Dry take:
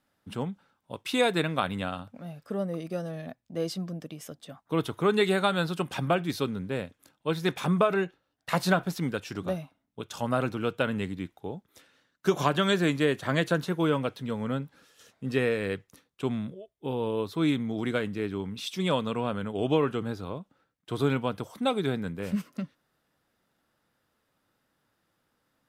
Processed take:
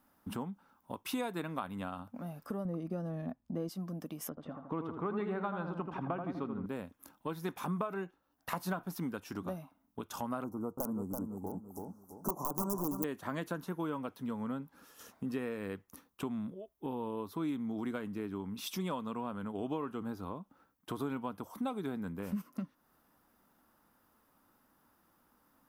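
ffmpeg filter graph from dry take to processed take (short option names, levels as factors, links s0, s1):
-filter_complex "[0:a]asettb=1/sr,asplit=3[s0][s1][s2];[s0]atrim=end=2.654[s3];[s1]atrim=start=2.65:end=3.69,asetpts=PTS-STARTPTS,afade=t=in:d=0.004:c=qsin,afade=t=out:st=1.036:d=0.004:c=qsin,lowpass=f=3700:p=1,lowshelf=f=380:g=8.5[s4];[s2]atrim=start=3.686[s5];[s3][s4]acrossfade=d=0.004:c1=hsin:c2=qsin[s6];[s6][s5]acrossfade=d=0.004:c1=qsin:c2=hsin,asettb=1/sr,asplit=3[s7][s8][s9];[s7]atrim=end=4.294[s10];[s8]atrim=start=4.29:end=6.66,asetpts=PTS-STARTPTS,afade=t=in:d=0.004:c=qsin,afade=t=out:st=2.366:d=0.004:c=qsin,lowpass=2100,asplit=2[s11][s12];[s12]adelay=81,lowpass=f=1600:p=1,volume=0.501,asplit=2[s13][s14];[s14]adelay=81,lowpass=f=1600:p=1,volume=0.5,asplit=2[s15][s16];[s16]adelay=81,lowpass=f=1600:p=1,volume=0.5,asplit=2[s17][s18];[s18]adelay=81,lowpass=f=1600:p=1,volume=0.5,asplit=2[s19][s20];[s20]adelay=81,lowpass=f=1600:p=1,volume=0.5,asplit=2[s21][s22];[s22]adelay=81,lowpass=f=1600:p=1,volume=0.5[s23];[s11][s13][s15][s17][s19][s21][s23]amix=inputs=7:normalize=0,atrim=end_sample=104517[s24];[s9]atrim=start=6.656[s25];[s10][s24]acrossfade=d=0.004:c1=hsin:c2=qsin[s26];[s26][s25]acrossfade=d=0.004:c1=qsin:c2=hsin,asettb=1/sr,asplit=3[s27][s28][s29];[s27]atrim=end=10.444[s30];[s28]atrim=start=10.44:end=13.04,asetpts=PTS-STARTPTS,afade=t=in:d=0.004:c=qsin,afade=t=out:st=2.596:d=0.004:c=qsin,aeval=exprs='(mod(5.62*val(0)+1,2)-1)/5.62':c=same,asuperstop=centerf=2600:order=8:qfactor=0.54,aecho=1:1:332|664|996:0.422|0.101|0.0243,atrim=end_sample=114660[s31];[s29]atrim=start=13.036[s32];[s30][s31]acrossfade=d=0.004:c1=hsin:c2=qsin[s33];[s33][s32]acrossfade=d=0.004:c1=qsin:c2=hsin,equalizer=f=125:t=o:w=1:g=-10,equalizer=f=250:t=o:w=1:g=5,equalizer=f=500:t=o:w=1:g=-3,equalizer=f=1000:t=o:w=1:g=8,equalizer=f=2000:t=o:w=1:g=-3,equalizer=f=4000:t=o:w=1:g=-9,equalizer=f=8000:t=o:w=1:g=-11,acompressor=threshold=0.00562:ratio=2.5,bass=f=250:g=5,treble=f=4000:g=12,volume=1.26"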